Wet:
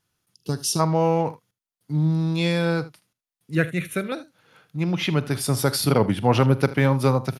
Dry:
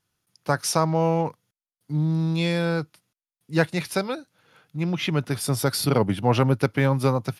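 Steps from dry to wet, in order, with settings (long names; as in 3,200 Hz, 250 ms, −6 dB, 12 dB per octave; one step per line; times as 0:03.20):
0:03.55–0:04.12: phaser with its sweep stopped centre 2,100 Hz, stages 4
ambience of single reflections 45 ms −17.5 dB, 77 ms −17.5 dB
0:00.34–0:00.79: gain on a spectral selection 460–2,600 Hz −17 dB
level +1.5 dB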